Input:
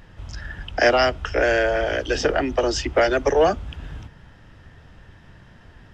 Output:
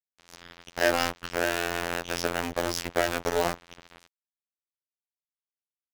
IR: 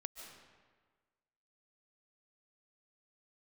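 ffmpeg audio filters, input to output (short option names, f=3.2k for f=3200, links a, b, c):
-filter_complex "[0:a]asplit=2[a][b];[b]aeval=exprs='(mod(9.44*val(0)+1,2)-1)/9.44':c=same,volume=-6dB[c];[a][c]amix=inputs=2:normalize=0,aeval=exprs='val(0)+0.00794*(sin(2*PI*60*n/s)+sin(2*PI*2*60*n/s)/2+sin(2*PI*3*60*n/s)/3+sin(2*PI*4*60*n/s)/4+sin(2*PI*5*60*n/s)/5)':c=same,afftfilt=real='hypot(re,im)*cos(PI*b)':imag='0':win_size=2048:overlap=0.75,aeval=exprs='sgn(val(0))*max(abs(val(0))-0.0422,0)':c=same,volume=-2.5dB"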